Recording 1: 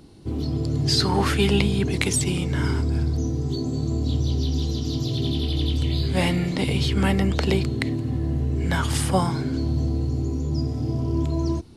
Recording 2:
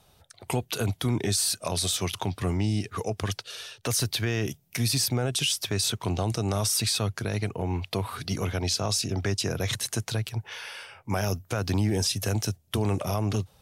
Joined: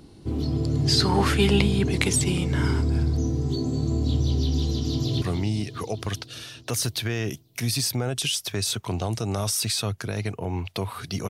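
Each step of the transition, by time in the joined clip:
recording 1
4.96–5.22 echo throw 0.2 s, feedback 75%, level -10.5 dB
5.22 switch to recording 2 from 2.39 s

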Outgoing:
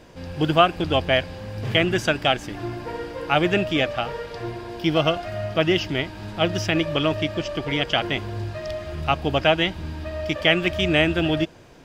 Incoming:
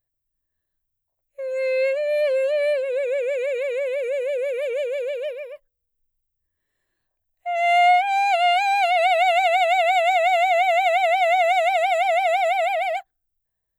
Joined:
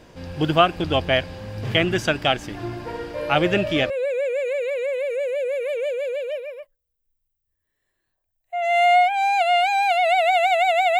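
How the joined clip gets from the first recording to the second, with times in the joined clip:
outgoing
3.14 add incoming from 2.07 s 0.76 s -9.5 dB
3.9 switch to incoming from 2.83 s

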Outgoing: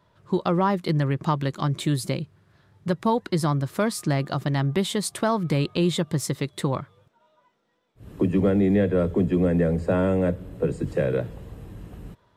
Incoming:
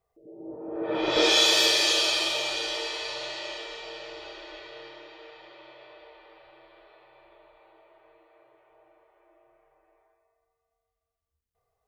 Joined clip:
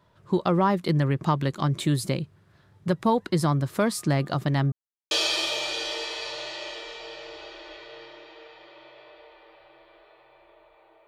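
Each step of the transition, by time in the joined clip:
outgoing
4.72–5.11 mute
5.11 switch to incoming from 1.94 s

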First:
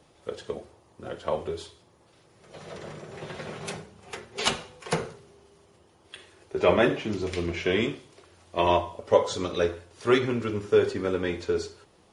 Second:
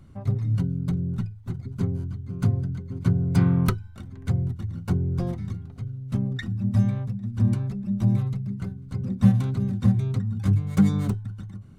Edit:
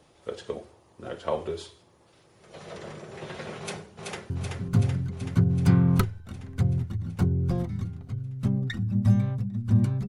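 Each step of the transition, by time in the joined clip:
first
3.59–4.3 echo throw 0.38 s, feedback 70%, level -3 dB
4.3 switch to second from 1.99 s

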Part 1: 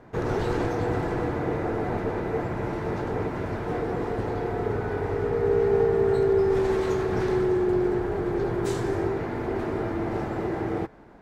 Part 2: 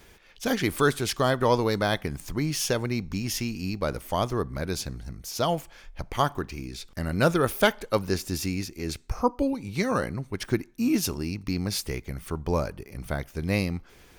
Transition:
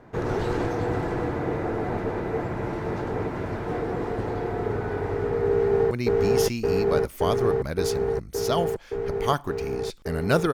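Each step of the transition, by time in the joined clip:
part 1
5.49–5.91 echo throw 0.57 s, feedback 85%, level 0 dB
5.91 switch to part 2 from 2.82 s

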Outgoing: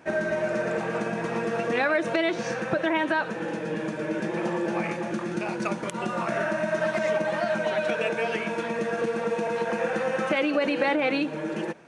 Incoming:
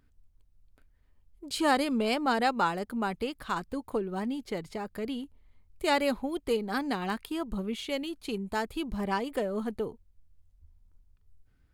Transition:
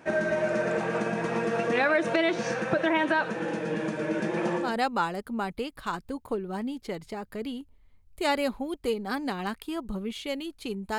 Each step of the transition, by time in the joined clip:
outgoing
4.66 switch to incoming from 2.29 s, crossfade 0.22 s

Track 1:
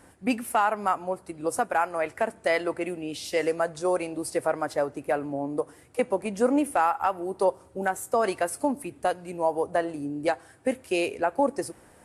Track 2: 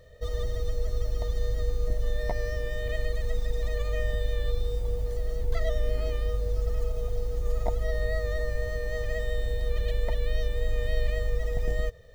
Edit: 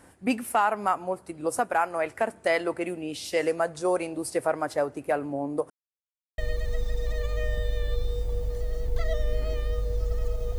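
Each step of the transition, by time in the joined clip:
track 1
5.7–6.38 mute
6.38 switch to track 2 from 2.94 s

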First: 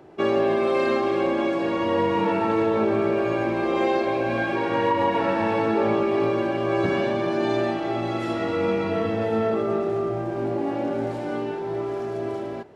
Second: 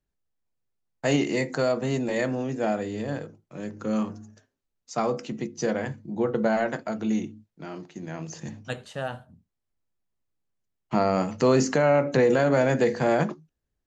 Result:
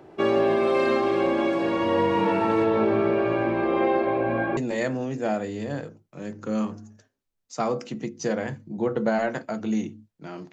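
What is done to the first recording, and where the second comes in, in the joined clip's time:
first
2.64–4.57 LPF 5400 Hz -> 1500 Hz
4.57 switch to second from 1.95 s

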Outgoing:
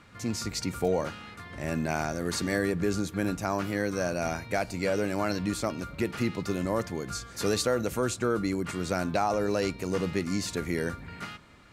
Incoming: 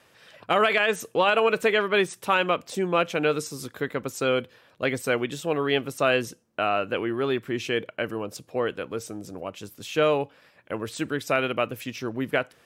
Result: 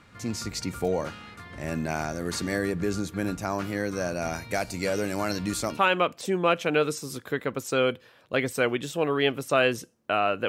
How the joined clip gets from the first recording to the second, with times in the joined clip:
outgoing
4.33–5.8 high shelf 4100 Hz +7 dB
5.77 switch to incoming from 2.26 s, crossfade 0.06 s

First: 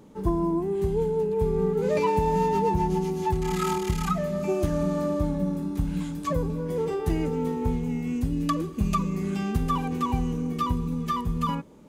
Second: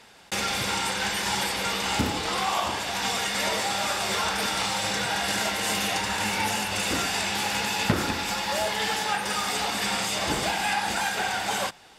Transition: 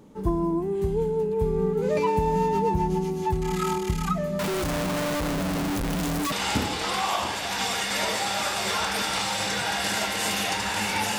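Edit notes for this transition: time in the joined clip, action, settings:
first
4.39–6.32 infinite clipping
6.32 switch to second from 1.76 s

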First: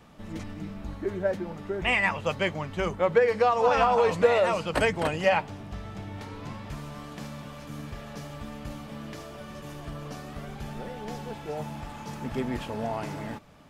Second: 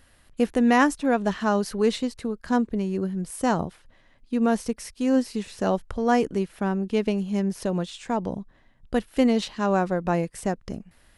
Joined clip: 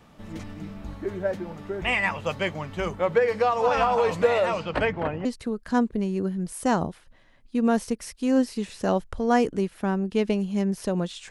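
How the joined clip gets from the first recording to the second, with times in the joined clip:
first
4.45–5.25 LPF 7400 Hz -> 1200 Hz
5.25 switch to second from 2.03 s

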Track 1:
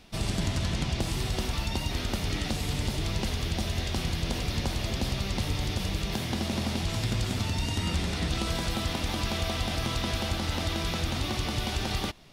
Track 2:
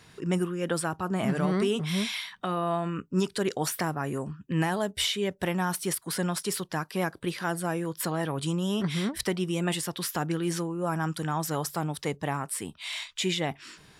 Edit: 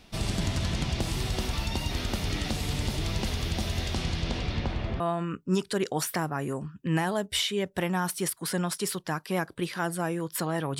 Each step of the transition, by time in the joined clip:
track 1
3.94–5 LPF 10000 Hz -> 1600 Hz
5 switch to track 2 from 2.65 s

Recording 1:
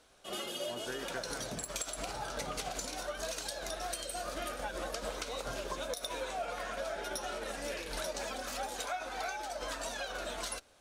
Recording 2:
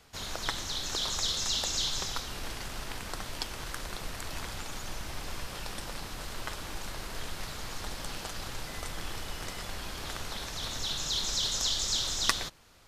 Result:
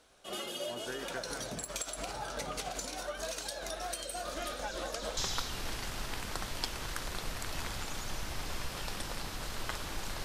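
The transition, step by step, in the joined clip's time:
recording 1
4.25 add recording 2 from 1.03 s 0.92 s -17.5 dB
5.17 switch to recording 2 from 1.95 s

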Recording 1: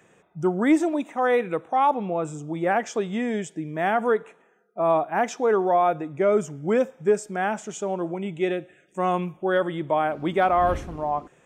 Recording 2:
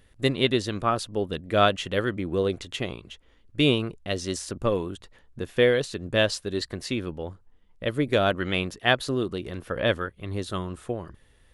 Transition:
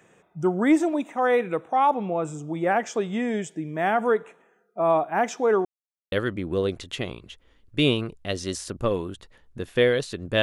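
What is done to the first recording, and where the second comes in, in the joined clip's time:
recording 1
5.65–6.12 mute
6.12 switch to recording 2 from 1.93 s

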